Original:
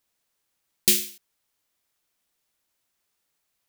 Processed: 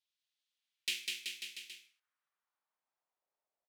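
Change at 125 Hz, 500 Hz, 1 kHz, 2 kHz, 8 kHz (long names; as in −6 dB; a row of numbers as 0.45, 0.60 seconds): below −30 dB, −26.5 dB, can't be measured, −3.5 dB, −19.0 dB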